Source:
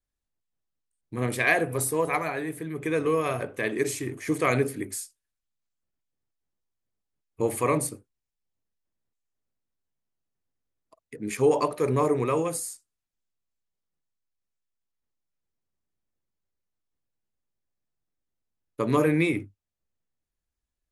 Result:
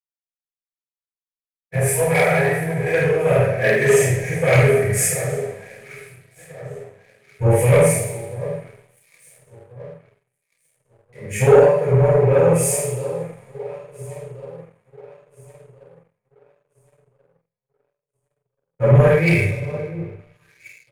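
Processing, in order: low shelf 200 Hz +9.5 dB; fixed phaser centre 1100 Hz, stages 6; echo with dull and thin repeats by turns 0.691 s, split 1200 Hz, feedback 74%, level -14 dB; two-slope reverb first 0.77 s, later 2.9 s, from -18 dB, DRR -10 dB; vocal rider within 5 dB 0.5 s; high shelf 7000 Hz -9.5 dB; doubler 49 ms -3.5 dB; sample leveller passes 2; spectral freeze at 0.44, 1.29 s; three-band expander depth 100%; gain -7.5 dB

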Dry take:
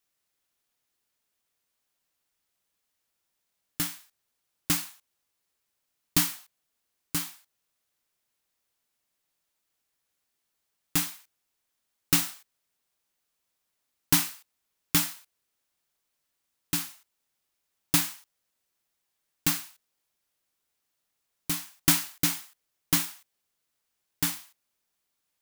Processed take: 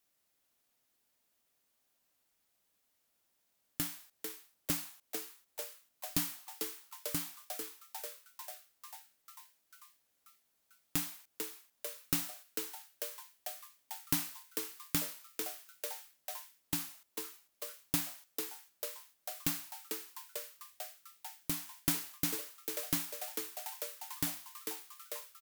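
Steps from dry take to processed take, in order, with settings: fifteen-band EQ 250 Hz +5 dB, 630 Hz +4 dB, 16000 Hz +4 dB; frequency-shifting echo 0.445 s, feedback 64%, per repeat +150 Hz, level -12 dB; compressor 2:1, threshold -39 dBFS, peak gain reduction 13.5 dB

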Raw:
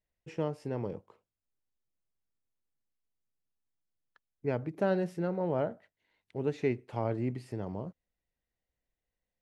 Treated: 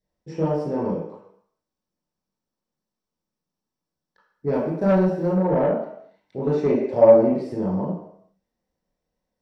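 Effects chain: 4.53–5.33 G.711 law mismatch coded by A; reverb RT60 0.70 s, pre-delay 19 ms, DRR -8.5 dB; soft clip -8 dBFS, distortion -15 dB; 6.7–7.53 bell 570 Hz +13.5 dB 0.4 oct; gain -4.5 dB

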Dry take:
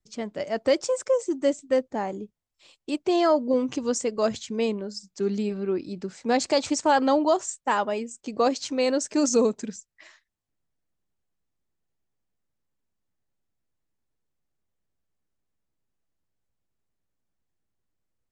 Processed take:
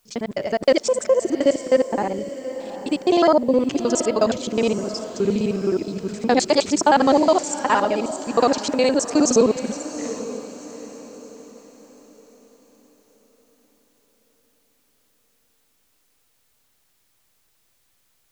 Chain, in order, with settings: local time reversal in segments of 52 ms; diffused feedback echo 0.778 s, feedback 40%, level -12 dB; requantised 12-bit, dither triangular; gain +5.5 dB

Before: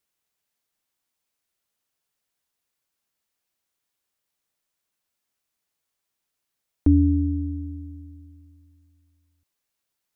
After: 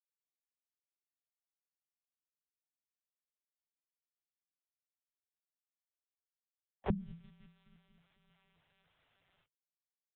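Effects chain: notches 60/120/180/240/300/360/420 Hz; chorus voices 4, 0.91 Hz, delay 26 ms, depth 3.3 ms; spectral gate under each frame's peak -30 dB weak; comb 3.2 ms, depth 88%; monotone LPC vocoder at 8 kHz 190 Hz; frequency shift -170 Hz; gain +13.5 dB

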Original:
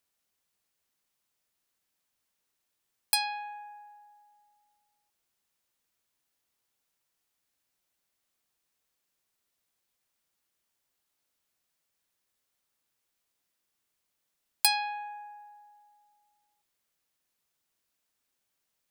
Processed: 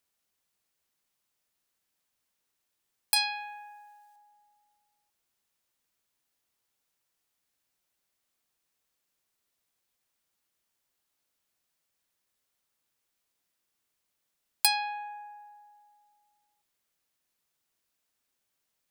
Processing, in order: 3.16–4.16 tilt shelf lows -7 dB, about 1100 Hz

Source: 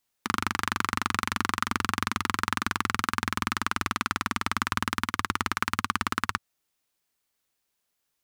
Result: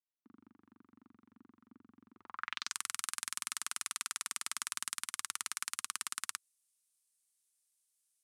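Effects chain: differentiator; low-pass sweep 270 Hz -> 9400 Hz, 2.11–2.76; gain -3 dB

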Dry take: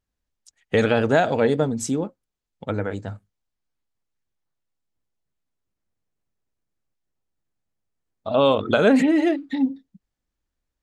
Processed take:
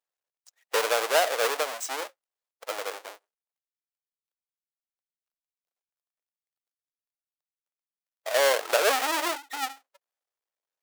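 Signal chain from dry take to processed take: half-waves squared off; inverse Chebyshev high-pass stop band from 190 Hz, stop band 50 dB; gain -6.5 dB

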